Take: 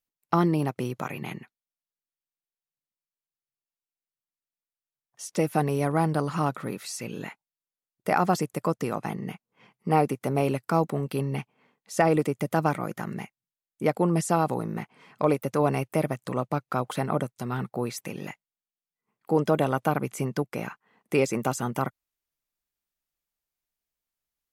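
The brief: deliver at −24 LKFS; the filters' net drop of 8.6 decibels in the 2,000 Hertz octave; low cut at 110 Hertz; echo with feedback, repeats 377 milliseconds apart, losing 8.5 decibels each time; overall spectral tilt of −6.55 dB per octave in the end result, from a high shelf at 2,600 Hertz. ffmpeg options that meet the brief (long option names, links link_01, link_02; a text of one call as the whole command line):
ffmpeg -i in.wav -af "highpass=110,equalizer=frequency=2000:width_type=o:gain=-8.5,highshelf=frequency=2600:gain=-8,aecho=1:1:377|754|1131|1508:0.376|0.143|0.0543|0.0206,volume=4.5dB" out.wav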